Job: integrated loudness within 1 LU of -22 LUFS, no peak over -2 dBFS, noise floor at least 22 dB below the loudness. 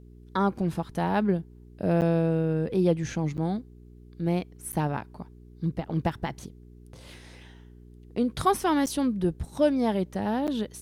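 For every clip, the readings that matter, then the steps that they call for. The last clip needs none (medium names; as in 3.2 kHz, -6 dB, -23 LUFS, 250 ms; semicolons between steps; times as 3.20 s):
dropouts 5; longest dropout 8.6 ms; hum 60 Hz; highest harmonic 420 Hz; hum level -47 dBFS; loudness -27.5 LUFS; peak level -10.5 dBFS; loudness target -22.0 LUFS
-> interpolate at 2.01/3.37/4.72/8.86/10.47 s, 8.6 ms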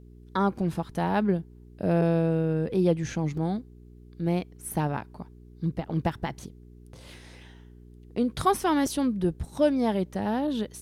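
dropouts 0; hum 60 Hz; highest harmonic 420 Hz; hum level -47 dBFS
-> de-hum 60 Hz, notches 7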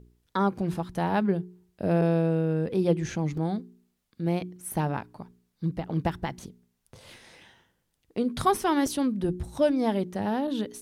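hum not found; loudness -28.0 LUFS; peak level -10.5 dBFS; loudness target -22.0 LUFS
-> trim +6 dB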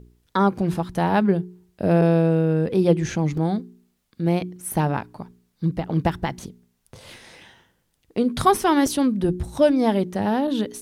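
loudness -22.0 LUFS; peak level -4.5 dBFS; noise floor -70 dBFS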